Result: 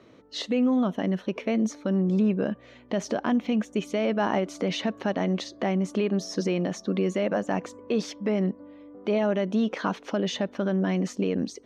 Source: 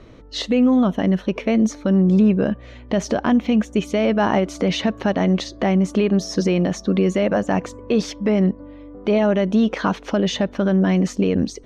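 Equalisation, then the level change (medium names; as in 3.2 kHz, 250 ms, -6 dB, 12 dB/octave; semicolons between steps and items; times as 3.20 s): high-pass 170 Hz 12 dB/octave; -6.5 dB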